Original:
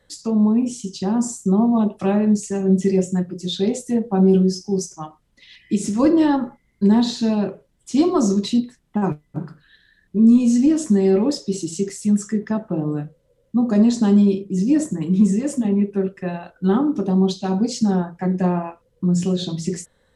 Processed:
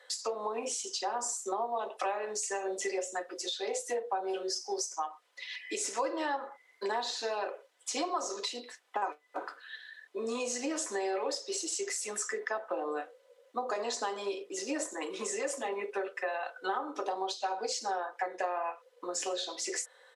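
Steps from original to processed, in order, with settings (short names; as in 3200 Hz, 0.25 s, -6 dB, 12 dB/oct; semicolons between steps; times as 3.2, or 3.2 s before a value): Bessel high-pass 760 Hz, order 8; high shelf 7000 Hz -10.5 dB; comb 4 ms, depth 35%; compressor 5:1, threshold -39 dBFS, peak gain reduction 15.5 dB; dynamic EQ 3300 Hz, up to -5 dB, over -54 dBFS, Q 1.5; gain +8 dB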